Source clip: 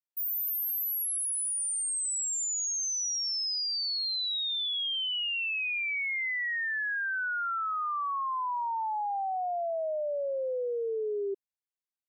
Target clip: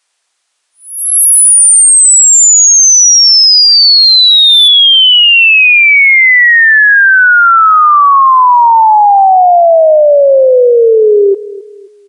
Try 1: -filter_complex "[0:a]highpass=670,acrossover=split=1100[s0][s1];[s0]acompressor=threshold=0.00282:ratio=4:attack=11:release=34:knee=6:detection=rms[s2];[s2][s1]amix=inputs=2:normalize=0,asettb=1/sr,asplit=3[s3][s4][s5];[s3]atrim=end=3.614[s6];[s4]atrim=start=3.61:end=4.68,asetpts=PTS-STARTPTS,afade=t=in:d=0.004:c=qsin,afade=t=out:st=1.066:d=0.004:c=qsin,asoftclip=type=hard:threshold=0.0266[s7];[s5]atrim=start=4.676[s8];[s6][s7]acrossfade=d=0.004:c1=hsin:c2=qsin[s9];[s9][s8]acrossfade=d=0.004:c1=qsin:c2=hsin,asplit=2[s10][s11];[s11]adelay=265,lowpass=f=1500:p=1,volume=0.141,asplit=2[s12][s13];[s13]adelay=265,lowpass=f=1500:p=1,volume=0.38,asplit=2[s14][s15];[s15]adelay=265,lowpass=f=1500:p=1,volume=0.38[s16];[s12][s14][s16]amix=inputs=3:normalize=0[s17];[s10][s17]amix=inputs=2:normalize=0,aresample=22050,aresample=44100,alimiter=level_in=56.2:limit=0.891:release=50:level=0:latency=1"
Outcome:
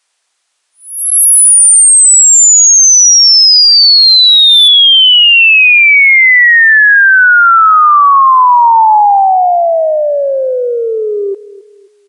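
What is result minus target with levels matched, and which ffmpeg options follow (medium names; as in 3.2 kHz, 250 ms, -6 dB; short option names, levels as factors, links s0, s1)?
compression: peak gain reduction +12.5 dB
-filter_complex "[0:a]highpass=670,asettb=1/sr,asplit=3[s0][s1][s2];[s0]atrim=end=3.614[s3];[s1]atrim=start=3.61:end=4.68,asetpts=PTS-STARTPTS,afade=t=in:d=0.004:c=qsin,afade=t=out:st=1.066:d=0.004:c=qsin,asoftclip=type=hard:threshold=0.0266[s4];[s2]atrim=start=4.676[s5];[s3][s4]acrossfade=d=0.004:c1=hsin:c2=qsin[s6];[s6][s5]acrossfade=d=0.004:c1=qsin:c2=hsin,asplit=2[s7][s8];[s8]adelay=265,lowpass=f=1500:p=1,volume=0.141,asplit=2[s9][s10];[s10]adelay=265,lowpass=f=1500:p=1,volume=0.38,asplit=2[s11][s12];[s12]adelay=265,lowpass=f=1500:p=1,volume=0.38[s13];[s9][s11][s13]amix=inputs=3:normalize=0[s14];[s7][s14]amix=inputs=2:normalize=0,aresample=22050,aresample=44100,alimiter=level_in=56.2:limit=0.891:release=50:level=0:latency=1"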